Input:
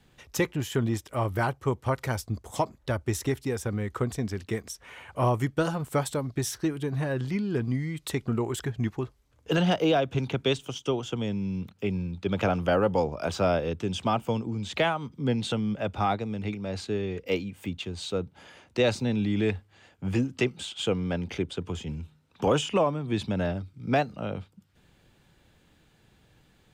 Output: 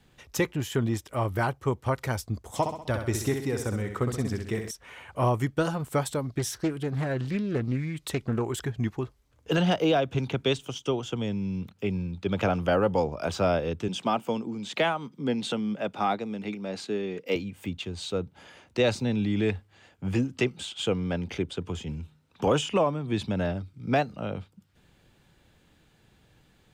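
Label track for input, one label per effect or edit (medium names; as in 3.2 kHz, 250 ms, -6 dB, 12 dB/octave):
2.560000	4.710000	flutter echo walls apart 11.1 m, dies away in 0.61 s
6.390000	8.450000	loudspeaker Doppler distortion depth 0.35 ms
13.880000	17.360000	high-pass 160 Hz 24 dB/octave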